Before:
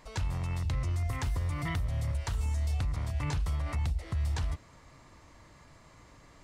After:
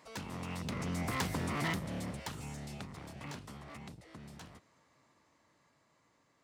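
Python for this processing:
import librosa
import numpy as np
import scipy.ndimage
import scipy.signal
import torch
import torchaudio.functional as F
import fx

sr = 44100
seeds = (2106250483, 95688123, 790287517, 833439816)

y = np.minimum(x, 2.0 * 10.0 ** (-33.0 / 20.0) - x)
y = fx.doppler_pass(y, sr, speed_mps=6, closest_m=3.1, pass_at_s=1.31)
y = scipy.signal.sosfilt(scipy.signal.butter(2, 170.0, 'highpass', fs=sr, output='sos'), y)
y = F.gain(torch.from_numpy(y), 5.5).numpy()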